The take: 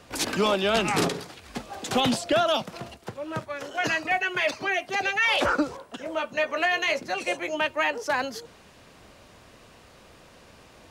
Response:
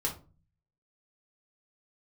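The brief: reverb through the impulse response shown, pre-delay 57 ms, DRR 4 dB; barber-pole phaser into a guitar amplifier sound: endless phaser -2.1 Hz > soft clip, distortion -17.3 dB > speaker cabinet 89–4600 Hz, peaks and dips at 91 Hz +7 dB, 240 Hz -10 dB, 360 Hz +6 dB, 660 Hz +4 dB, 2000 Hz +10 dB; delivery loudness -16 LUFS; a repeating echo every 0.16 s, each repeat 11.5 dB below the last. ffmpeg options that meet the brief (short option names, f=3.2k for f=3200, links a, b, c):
-filter_complex "[0:a]aecho=1:1:160|320|480:0.266|0.0718|0.0194,asplit=2[a][b];[1:a]atrim=start_sample=2205,adelay=57[c];[b][c]afir=irnorm=-1:irlink=0,volume=-8.5dB[d];[a][d]amix=inputs=2:normalize=0,asplit=2[e][f];[f]afreqshift=-2.1[g];[e][g]amix=inputs=2:normalize=1,asoftclip=threshold=-19dB,highpass=89,equalizer=f=91:t=q:w=4:g=7,equalizer=f=240:t=q:w=4:g=-10,equalizer=f=360:t=q:w=4:g=6,equalizer=f=660:t=q:w=4:g=4,equalizer=f=2k:t=q:w=4:g=10,lowpass=f=4.6k:w=0.5412,lowpass=f=4.6k:w=1.3066,volume=9dB"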